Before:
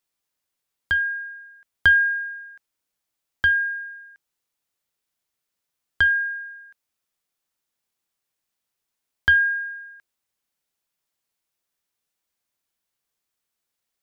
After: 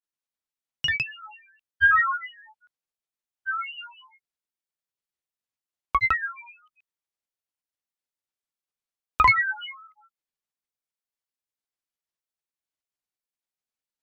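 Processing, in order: notches 50/100/150/200/250 Hz; grains, pitch spread up and down by 12 st; upward expander 1.5:1, over -36 dBFS

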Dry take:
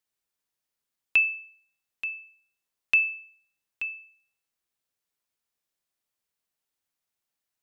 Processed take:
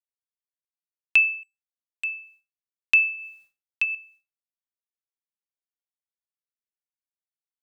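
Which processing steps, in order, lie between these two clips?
3.14–3.95 transient shaper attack +6 dB, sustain +10 dB; expander -54 dBFS; 1.43–2.04 power-law curve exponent 2; gain +3.5 dB

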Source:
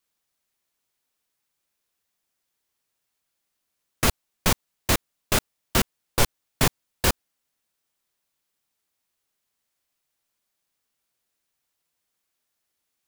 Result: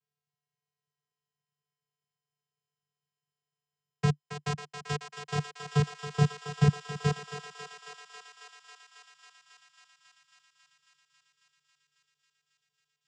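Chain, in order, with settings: 4.09–5.37 low shelf 330 Hz -10 dB; vocoder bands 8, square 146 Hz; thinning echo 0.273 s, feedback 84%, high-pass 500 Hz, level -7 dB; gain -1 dB

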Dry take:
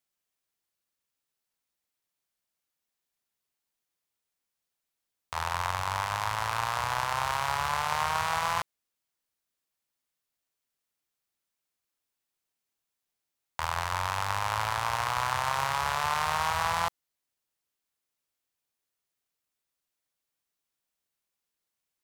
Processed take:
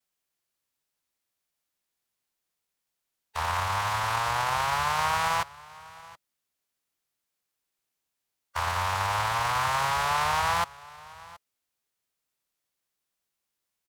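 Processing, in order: vibrato 0.54 Hz 34 cents; echo 1.151 s -21 dB; time stretch by phase-locked vocoder 0.63×; gain +3.5 dB

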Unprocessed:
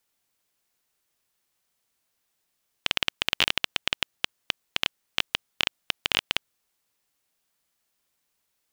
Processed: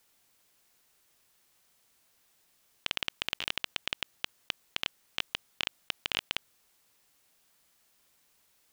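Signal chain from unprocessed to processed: negative-ratio compressor -33 dBFS, ratio -1

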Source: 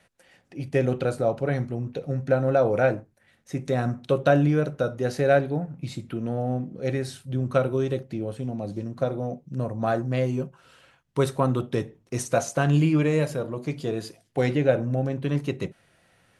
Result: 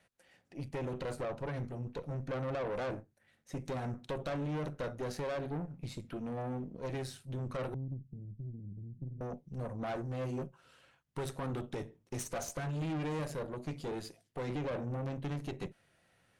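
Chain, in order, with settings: 7.74–9.21 inverse Chebyshev low-pass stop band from 1100 Hz, stop band 80 dB; limiter -17 dBFS, peak gain reduction 9.5 dB; tube stage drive 29 dB, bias 0.75; gain -4 dB

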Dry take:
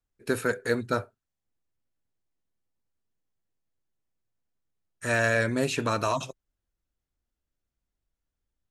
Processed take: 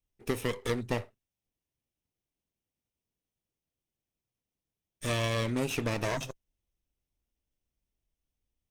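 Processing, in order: minimum comb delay 0.35 ms; compressor 2.5:1, threshold -28 dBFS, peak gain reduction 5.5 dB

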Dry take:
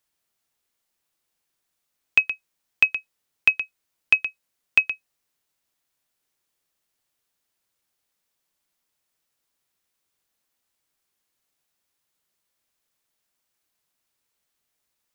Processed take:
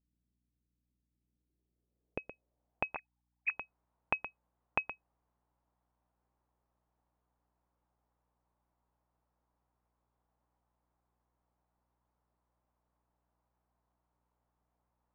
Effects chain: 2.95–3.51 sine-wave speech; low-pass sweep 230 Hz -> 910 Hz, 1.15–3.05; hum 60 Hz, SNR 35 dB

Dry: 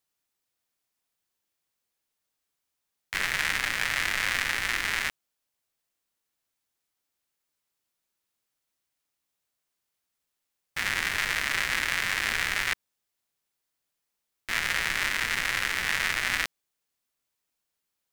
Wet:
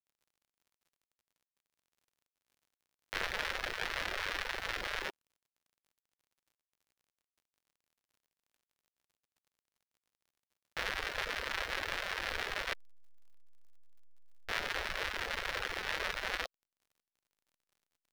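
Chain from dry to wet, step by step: level-crossing sampler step -31.5 dBFS; graphic EQ 125/250/500/2000/4000/8000 Hz -11/-9/+7/-6/+3/-5 dB; reverb removal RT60 1 s; high shelf 4900 Hz -11 dB; crackle 50/s -58 dBFS; gain -2 dB

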